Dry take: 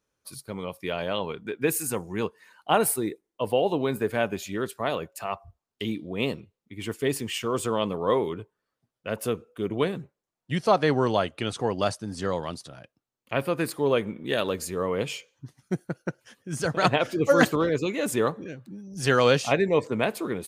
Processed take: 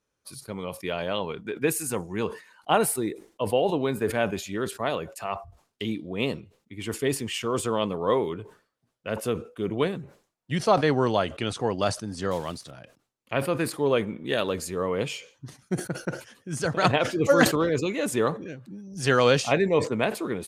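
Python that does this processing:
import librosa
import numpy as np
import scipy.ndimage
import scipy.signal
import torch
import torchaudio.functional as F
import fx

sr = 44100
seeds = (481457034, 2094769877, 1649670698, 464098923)

y = fx.block_float(x, sr, bits=5, at=(12.31, 12.71))
y = scipy.signal.sosfilt(scipy.signal.butter(2, 12000.0, 'lowpass', fs=sr, output='sos'), y)
y = fx.sustainer(y, sr, db_per_s=150.0)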